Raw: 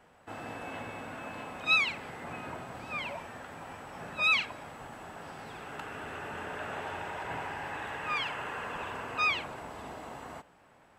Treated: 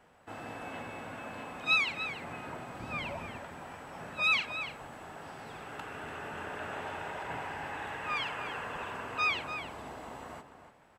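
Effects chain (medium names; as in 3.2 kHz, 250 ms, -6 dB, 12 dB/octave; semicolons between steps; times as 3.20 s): 2.80–3.38 s: bass shelf 260 Hz +9 dB; echo from a far wall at 50 m, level -9 dB; trim -1.5 dB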